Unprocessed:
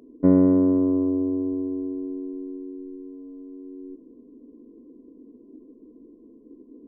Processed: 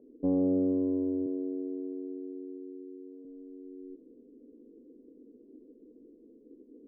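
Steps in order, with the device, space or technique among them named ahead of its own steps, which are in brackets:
0:01.26–0:03.25: high-pass filter 230 Hz 12 dB per octave
overdriven synthesiser ladder filter (soft clipping −14 dBFS, distortion −13 dB; transistor ladder low-pass 620 Hz, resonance 50%)

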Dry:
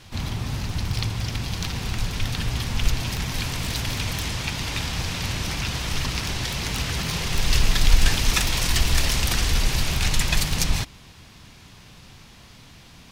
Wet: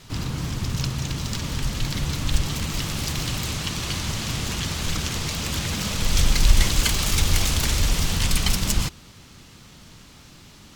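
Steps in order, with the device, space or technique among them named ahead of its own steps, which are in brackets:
nightcore (speed change +22%)

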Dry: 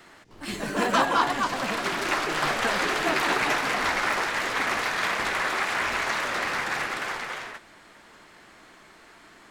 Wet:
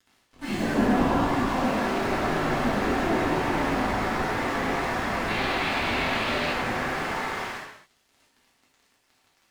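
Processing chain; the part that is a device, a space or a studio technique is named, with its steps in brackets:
early transistor amplifier (dead-zone distortion −44.5 dBFS; slew-rate limiting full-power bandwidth 22 Hz)
0:05.28–0:06.51: flat-topped bell 3,200 Hz +8.5 dB 1.2 octaves
reverb whose tail is shaped and stops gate 310 ms falling, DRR −6 dB
level +1.5 dB

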